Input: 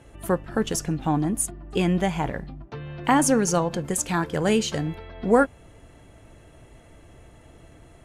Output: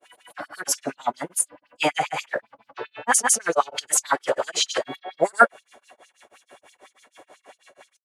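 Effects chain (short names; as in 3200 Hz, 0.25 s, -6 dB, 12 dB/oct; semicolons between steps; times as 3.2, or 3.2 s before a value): LFO high-pass sine 7.5 Hz 510–5600 Hz; grains 0.167 s, grains 6.2/s, spray 0.1 s, pitch spread up and down by 0 st; formant-preserving pitch shift -3 st; gain +8 dB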